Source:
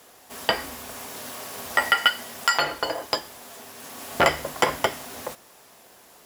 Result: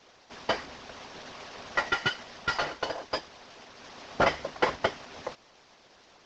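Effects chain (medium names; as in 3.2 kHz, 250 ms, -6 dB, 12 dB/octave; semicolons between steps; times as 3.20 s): CVSD coder 32 kbps; harmonic-percussive split harmonic -10 dB; trim -1.5 dB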